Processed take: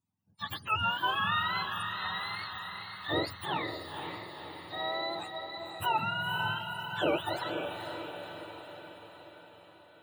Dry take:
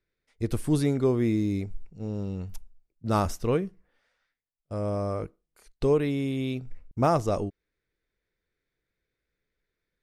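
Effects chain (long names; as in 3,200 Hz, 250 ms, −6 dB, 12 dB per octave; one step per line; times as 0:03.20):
frequency axis turned over on the octave scale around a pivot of 630 Hz
feedback delay with all-pass diffusion 510 ms, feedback 58%, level −6 dB
level −4 dB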